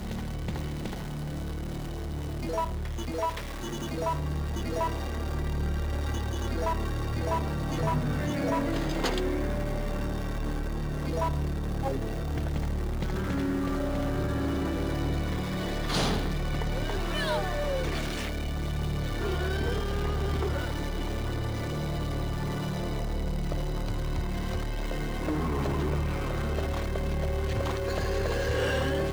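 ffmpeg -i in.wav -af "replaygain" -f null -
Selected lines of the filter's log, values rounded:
track_gain = +13.4 dB
track_peak = 0.077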